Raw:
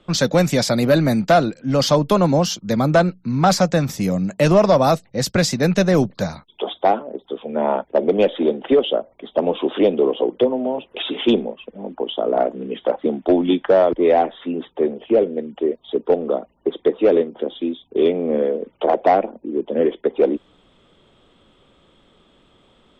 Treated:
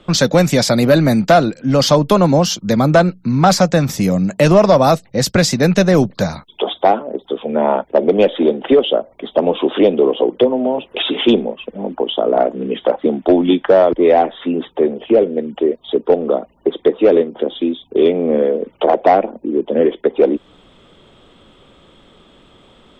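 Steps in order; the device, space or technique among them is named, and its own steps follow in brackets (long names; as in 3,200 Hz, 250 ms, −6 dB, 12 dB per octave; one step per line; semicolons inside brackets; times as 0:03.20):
parallel compression (in parallel at 0 dB: downward compressor, threshold −25 dBFS, peak gain reduction 15 dB)
on the sum: level +2 dB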